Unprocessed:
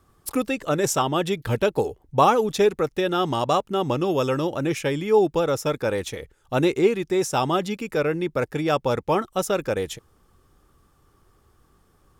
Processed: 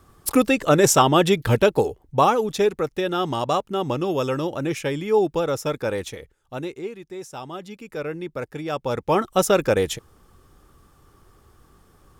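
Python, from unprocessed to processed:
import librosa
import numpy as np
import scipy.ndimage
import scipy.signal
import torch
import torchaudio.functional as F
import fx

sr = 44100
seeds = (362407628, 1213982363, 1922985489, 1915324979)

y = fx.gain(x, sr, db=fx.line((1.35, 6.5), (2.33, -1.0), (6.02, -1.0), (6.81, -13.0), (7.48, -13.0), (8.09, -6.0), (8.7, -6.0), (9.34, 5.5)))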